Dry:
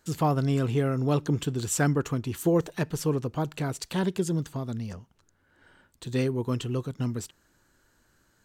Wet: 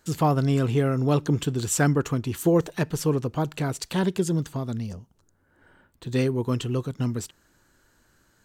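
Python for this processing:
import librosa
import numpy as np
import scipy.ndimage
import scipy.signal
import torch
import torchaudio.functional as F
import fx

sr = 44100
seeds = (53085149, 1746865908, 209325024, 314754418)

y = fx.peak_eq(x, sr, hz=fx.line((4.86, 1500.0), (6.11, 8300.0)), db=-10.5, octaves=2.0, at=(4.86, 6.11), fade=0.02)
y = y * librosa.db_to_amplitude(3.0)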